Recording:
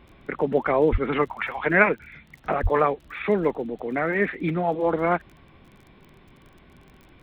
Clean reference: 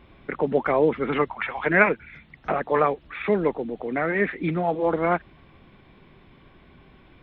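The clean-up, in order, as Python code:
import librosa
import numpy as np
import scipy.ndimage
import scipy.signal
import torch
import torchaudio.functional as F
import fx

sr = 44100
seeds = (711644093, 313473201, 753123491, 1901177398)

y = fx.fix_declick_ar(x, sr, threshold=6.5)
y = fx.highpass(y, sr, hz=140.0, slope=24, at=(0.91, 1.03), fade=0.02)
y = fx.highpass(y, sr, hz=140.0, slope=24, at=(2.62, 2.74), fade=0.02)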